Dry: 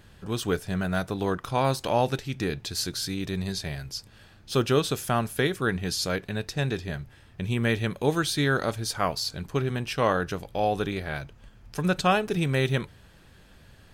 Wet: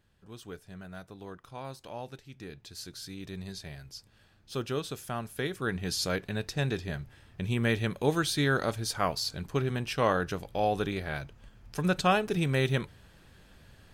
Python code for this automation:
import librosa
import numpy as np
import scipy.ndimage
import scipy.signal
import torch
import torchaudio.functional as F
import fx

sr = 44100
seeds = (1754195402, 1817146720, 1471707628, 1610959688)

y = fx.gain(x, sr, db=fx.line((2.18, -17.0), (3.32, -10.0), (5.24, -10.0), (5.97, -2.5)))